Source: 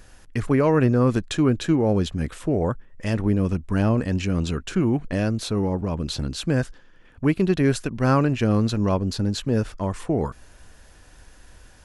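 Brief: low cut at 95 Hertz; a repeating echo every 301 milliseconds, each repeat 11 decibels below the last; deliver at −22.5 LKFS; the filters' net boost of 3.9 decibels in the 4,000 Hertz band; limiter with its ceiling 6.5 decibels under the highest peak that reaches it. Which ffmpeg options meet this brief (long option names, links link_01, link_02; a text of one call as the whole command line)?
ffmpeg -i in.wav -af "highpass=95,equalizer=frequency=4000:width_type=o:gain=4.5,alimiter=limit=-15dB:level=0:latency=1,aecho=1:1:301|602|903:0.282|0.0789|0.0221,volume=3dB" out.wav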